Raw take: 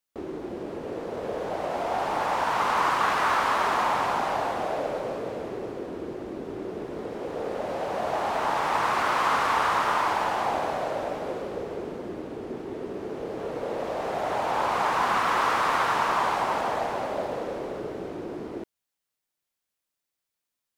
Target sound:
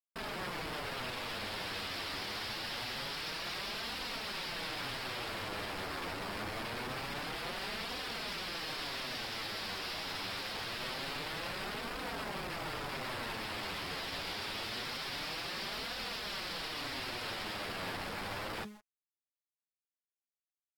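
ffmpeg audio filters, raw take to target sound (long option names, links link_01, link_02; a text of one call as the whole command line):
ffmpeg -i in.wav -filter_complex "[0:a]highpass=frequency=130:width=0.5412,highpass=frequency=130:width=1.3066,bass=frequency=250:gain=11,treble=frequency=4000:gain=-8,bandreject=frequency=209.7:width_type=h:width=4,bandreject=frequency=419.4:width_type=h:width=4,bandreject=frequency=629.1:width_type=h:width=4,bandreject=frequency=838.8:width_type=h:width=4,bandreject=frequency=1048.5:width_type=h:width=4,bandreject=frequency=1258.2:width_type=h:width=4,bandreject=frequency=1467.9:width_type=h:width=4,bandreject=frequency=1677.6:width_type=h:width=4,bandreject=frequency=1887.3:width_type=h:width=4,alimiter=limit=-23dB:level=0:latency=1:release=19,aresample=11025,aeval=exprs='(mod(47.3*val(0)+1,2)-1)/47.3':channel_layout=same,aresample=44100,acrusher=bits=8:mix=0:aa=0.000001,asplit=2[link_01][link_02];[link_02]aeval=exprs='(mod(56.2*val(0)+1,2)-1)/56.2':channel_layout=same,volume=-11.5dB[link_03];[link_01][link_03]amix=inputs=2:normalize=0,flanger=delay=3.8:depth=7.5:regen=-11:speed=0.25:shape=triangular" -ar 48000 -c:a aac -b:a 64k out.aac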